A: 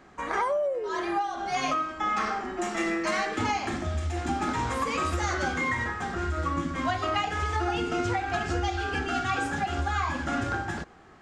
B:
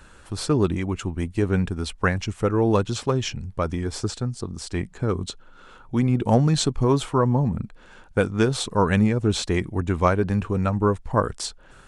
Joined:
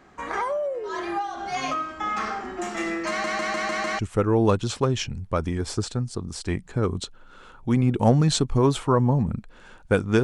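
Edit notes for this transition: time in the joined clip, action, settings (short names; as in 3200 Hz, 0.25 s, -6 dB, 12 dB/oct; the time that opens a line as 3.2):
A
3.09 stutter in place 0.15 s, 6 plays
3.99 switch to B from 2.25 s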